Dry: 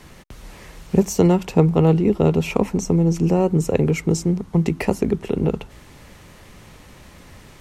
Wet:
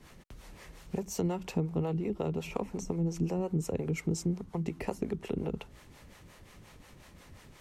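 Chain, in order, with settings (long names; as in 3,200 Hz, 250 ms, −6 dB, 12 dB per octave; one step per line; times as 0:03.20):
downward compressor 6 to 1, threshold −18 dBFS, peak gain reduction 9 dB
two-band tremolo in antiphase 5.6 Hz, depth 70%, crossover 420 Hz
level −6.5 dB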